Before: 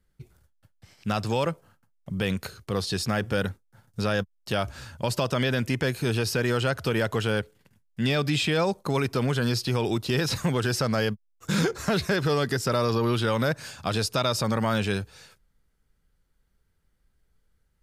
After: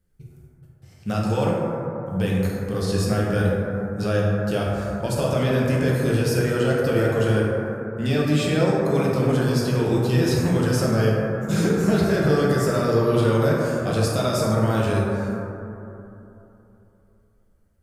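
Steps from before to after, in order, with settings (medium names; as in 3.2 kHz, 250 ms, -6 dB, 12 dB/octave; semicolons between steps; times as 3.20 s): graphic EQ 1/2/4 kHz -5/-4/-6 dB; plate-style reverb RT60 3.1 s, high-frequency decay 0.25×, DRR -5 dB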